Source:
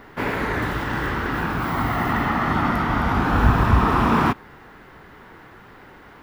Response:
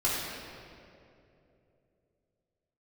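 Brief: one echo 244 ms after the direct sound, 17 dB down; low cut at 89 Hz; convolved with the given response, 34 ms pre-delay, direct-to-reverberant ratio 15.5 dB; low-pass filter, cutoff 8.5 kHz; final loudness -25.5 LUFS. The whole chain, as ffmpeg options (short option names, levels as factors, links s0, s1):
-filter_complex "[0:a]highpass=89,lowpass=8500,aecho=1:1:244:0.141,asplit=2[s0][s1];[1:a]atrim=start_sample=2205,adelay=34[s2];[s1][s2]afir=irnorm=-1:irlink=0,volume=0.0501[s3];[s0][s3]amix=inputs=2:normalize=0,volume=0.631"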